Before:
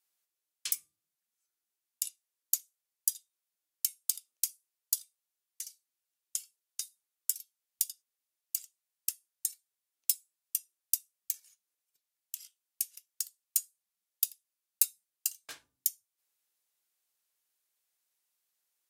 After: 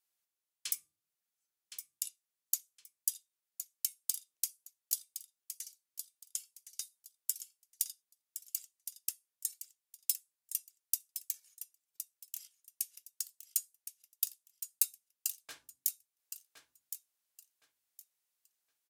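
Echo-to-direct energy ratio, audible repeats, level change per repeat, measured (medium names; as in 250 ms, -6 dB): -10.0 dB, 2, -13.0 dB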